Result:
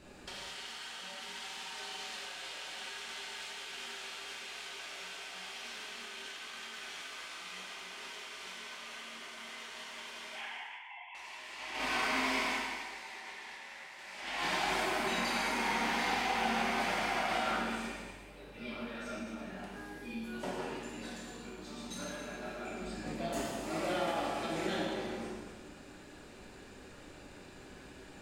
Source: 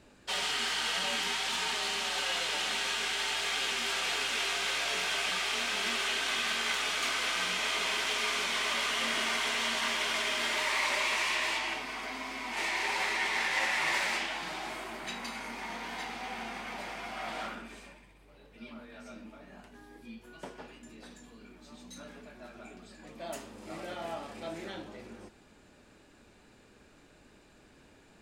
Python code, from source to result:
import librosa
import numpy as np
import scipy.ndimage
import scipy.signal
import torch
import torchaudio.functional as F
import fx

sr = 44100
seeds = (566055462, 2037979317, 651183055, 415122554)

y = fx.sine_speech(x, sr, at=(10.35, 11.15))
y = fx.low_shelf(y, sr, hz=310.0, db=7.5, at=(22.82, 23.41))
y = fx.over_compress(y, sr, threshold_db=-39.0, ratio=-0.5)
y = fx.echo_feedback(y, sr, ms=189, feedback_pct=18, wet_db=-13.5)
y = fx.rev_gated(y, sr, seeds[0], gate_ms=460, shape='falling', drr_db=-4.5)
y = fx.end_taper(y, sr, db_per_s=130.0)
y = y * 10.0 ** (-4.5 / 20.0)